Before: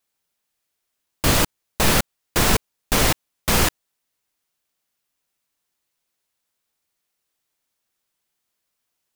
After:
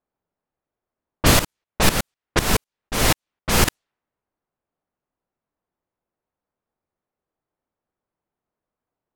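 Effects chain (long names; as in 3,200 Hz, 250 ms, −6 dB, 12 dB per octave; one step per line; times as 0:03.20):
low-pass that shuts in the quiet parts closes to 900 Hz, open at −16 dBFS
0:01.39–0:03.68: shaped tremolo saw up 4 Hz, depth 85%
level +3.5 dB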